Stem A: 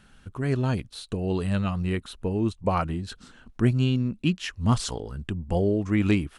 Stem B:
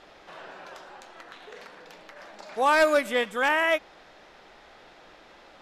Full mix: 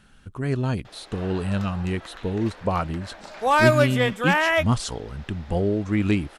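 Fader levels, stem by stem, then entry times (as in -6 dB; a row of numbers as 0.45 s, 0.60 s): +0.5 dB, +2.5 dB; 0.00 s, 0.85 s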